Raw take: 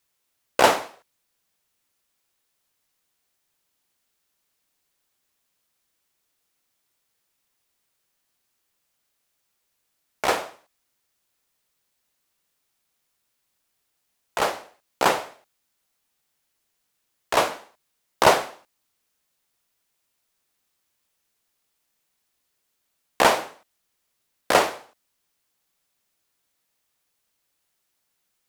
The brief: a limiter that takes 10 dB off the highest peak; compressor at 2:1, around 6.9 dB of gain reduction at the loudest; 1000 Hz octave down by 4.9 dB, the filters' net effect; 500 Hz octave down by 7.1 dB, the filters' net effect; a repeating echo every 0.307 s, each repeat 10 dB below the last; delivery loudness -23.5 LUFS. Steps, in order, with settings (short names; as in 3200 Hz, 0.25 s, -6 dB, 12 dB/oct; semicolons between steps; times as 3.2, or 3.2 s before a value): bell 500 Hz -8 dB; bell 1000 Hz -3.5 dB; compressor 2:1, threshold -27 dBFS; limiter -17 dBFS; feedback echo 0.307 s, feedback 32%, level -10 dB; gain +12 dB